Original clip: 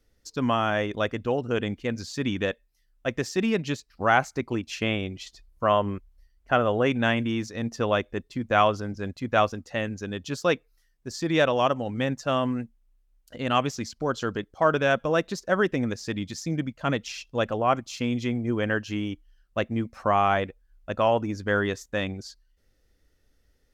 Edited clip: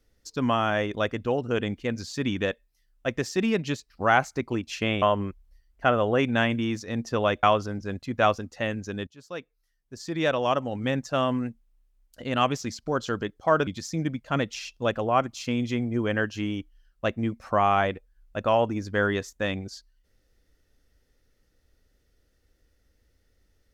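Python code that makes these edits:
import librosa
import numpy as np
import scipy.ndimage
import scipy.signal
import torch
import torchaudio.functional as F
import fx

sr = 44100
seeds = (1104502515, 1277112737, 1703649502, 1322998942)

y = fx.edit(x, sr, fx.cut(start_s=5.02, length_s=0.67),
    fx.cut(start_s=8.1, length_s=0.47),
    fx.fade_in_from(start_s=10.21, length_s=1.77, floor_db=-23.5),
    fx.cut(start_s=14.81, length_s=1.39), tone=tone)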